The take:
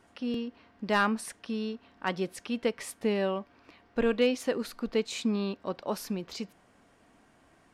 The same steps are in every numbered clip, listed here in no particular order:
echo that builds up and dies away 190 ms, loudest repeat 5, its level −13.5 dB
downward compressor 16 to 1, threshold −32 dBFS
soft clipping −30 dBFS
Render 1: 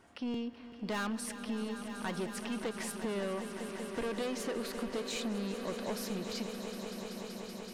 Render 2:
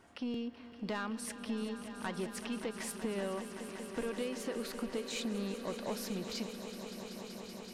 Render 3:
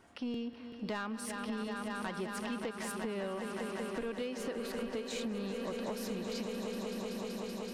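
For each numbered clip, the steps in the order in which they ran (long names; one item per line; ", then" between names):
soft clipping, then echo that builds up and dies away, then downward compressor
downward compressor, then soft clipping, then echo that builds up and dies away
echo that builds up and dies away, then downward compressor, then soft clipping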